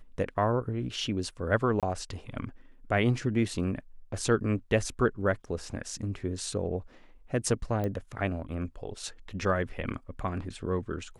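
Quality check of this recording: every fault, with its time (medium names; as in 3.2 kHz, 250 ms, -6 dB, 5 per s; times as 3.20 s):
1.80–1.83 s: dropout 27 ms
7.84 s: pop -21 dBFS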